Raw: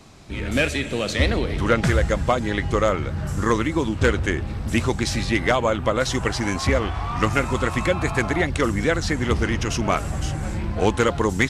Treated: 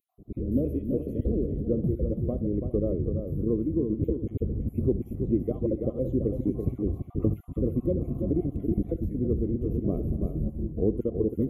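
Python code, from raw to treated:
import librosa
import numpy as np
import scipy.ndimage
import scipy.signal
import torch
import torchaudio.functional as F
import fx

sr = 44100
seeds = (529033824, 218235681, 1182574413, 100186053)

y = fx.spec_dropout(x, sr, seeds[0], share_pct=35)
y = scipy.signal.sosfilt(scipy.signal.cheby2(4, 40, [840.0, 8800.0], 'bandstop', fs=sr, output='sos'), y)
y = fx.peak_eq(y, sr, hz=290.0, db=3.5, octaves=1.7)
y = fx.echo_multitap(y, sr, ms=(69, 333, 411), db=(-16.0, -7.0, -17.5))
y = fx.rider(y, sr, range_db=3, speed_s=0.5)
y = fx.peak_eq(y, sr, hz=1000.0, db=12.0, octaves=1.0)
y = y * 10.0 ** (-5.0 / 20.0)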